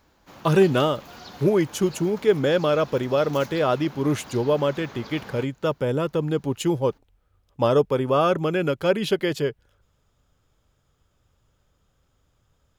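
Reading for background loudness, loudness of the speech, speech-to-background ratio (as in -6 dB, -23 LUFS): -43.0 LUFS, -23.0 LUFS, 20.0 dB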